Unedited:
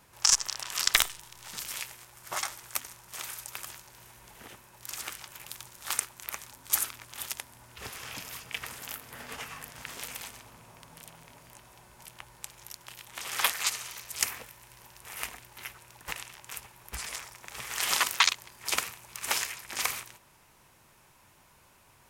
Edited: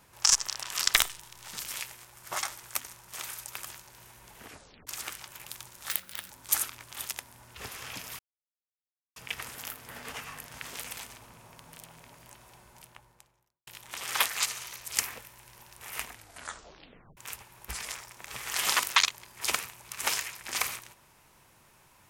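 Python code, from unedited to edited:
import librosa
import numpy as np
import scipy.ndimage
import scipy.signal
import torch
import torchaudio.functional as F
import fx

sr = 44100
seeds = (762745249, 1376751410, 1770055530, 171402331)

y = fx.studio_fade_out(x, sr, start_s=11.75, length_s=1.16)
y = fx.edit(y, sr, fx.tape_stop(start_s=4.45, length_s=0.42),
    fx.speed_span(start_s=5.89, length_s=0.62, speed=1.51),
    fx.insert_silence(at_s=8.4, length_s=0.97),
    fx.tape_stop(start_s=15.34, length_s=1.07), tone=tone)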